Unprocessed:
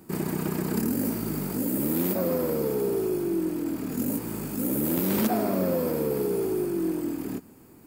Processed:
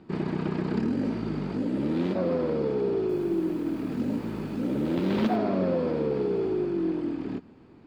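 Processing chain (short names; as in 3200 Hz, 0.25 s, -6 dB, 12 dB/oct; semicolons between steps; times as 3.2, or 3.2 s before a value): Chebyshev low-pass 3900 Hz, order 3; 2.97–5.36 lo-fi delay 0.122 s, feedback 55%, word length 8-bit, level -11.5 dB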